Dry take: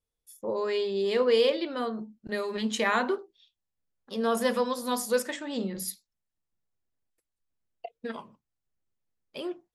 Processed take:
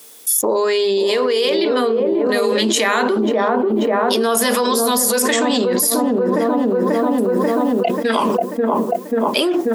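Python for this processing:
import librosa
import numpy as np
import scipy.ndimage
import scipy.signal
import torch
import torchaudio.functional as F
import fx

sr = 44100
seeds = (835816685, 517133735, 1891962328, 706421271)

y = scipy.signal.sosfilt(scipy.signal.butter(4, 240.0, 'highpass', fs=sr, output='sos'), x)
y = fx.high_shelf(y, sr, hz=5900.0, db=11.0)
y = fx.notch(y, sr, hz=520.0, q=12.0)
y = fx.echo_wet_lowpass(y, sr, ms=538, feedback_pct=50, hz=770.0, wet_db=-4)
y = fx.env_flatten(y, sr, amount_pct=100)
y = F.gain(torch.from_numpy(y), 2.5).numpy()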